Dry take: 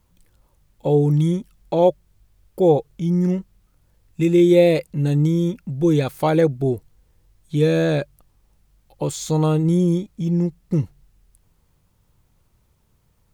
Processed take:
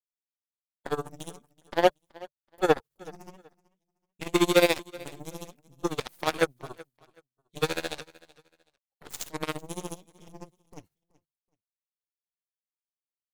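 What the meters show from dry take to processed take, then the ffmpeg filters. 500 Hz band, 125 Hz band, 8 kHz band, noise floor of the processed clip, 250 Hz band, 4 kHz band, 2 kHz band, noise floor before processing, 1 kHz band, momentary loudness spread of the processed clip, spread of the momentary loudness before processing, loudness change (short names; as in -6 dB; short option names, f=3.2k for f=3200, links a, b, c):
-10.0 dB, -22.5 dB, -2.5 dB, under -85 dBFS, -14.5 dB, +1.0 dB, +1.0 dB, -63 dBFS, -3.5 dB, 23 LU, 11 LU, -8.5 dB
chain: -af "highpass=f=250:p=1,agate=range=-33dB:threshold=-40dB:ratio=3:detection=peak,highshelf=f=3.4k:g=-11,tremolo=f=14:d=0.58,crystalizer=i=9:c=0,aeval=exprs='0.708*(cos(1*acos(clip(val(0)/0.708,-1,1)))-cos(1*PI/2))+0.0141*(cos(6*acos(clip(val(0)/0.708,-1,1)))-cos(6*PI/2))+0.112*(cos(7*acos(clip(val(0)/0.708,-1,1)))-cos(7*PI/2))+0.0316*(cos(8*acos(clip(val(0)/0.708,-1,1)))-cos(8*PI/2))':c=same,aecho=1:1:377|754:0.0794|0.0207,volume=-3.5dB"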